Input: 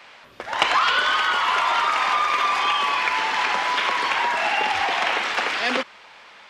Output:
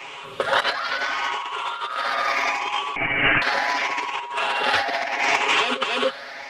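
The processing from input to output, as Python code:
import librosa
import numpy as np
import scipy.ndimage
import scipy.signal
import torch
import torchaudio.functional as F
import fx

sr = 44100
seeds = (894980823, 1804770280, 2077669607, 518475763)

y = fx.spec_ripple(x, sr, per_octave=0.7, drift_hz=0.74, depth_db=10)
y = fx.peak_eq(y, sr, hz=470.0, db=4.0, octaves=1.0)
y = y + 0.86 * np.pad(y, (int(7.3 * sr / 1000.0), 0))[:len(y)]
y = y + 10.0 ** (-10.5 / 20.0) * np.pad(y, (int(270 * sr / 1000.0), 0))[:len(y)]
y = fx.freq_invert(y, sr, carrier_hz=3300, at=(2.96, 3.42))
y = fx.over_compress(y, sr, threshold_db=-22.0, ratio=-0.5)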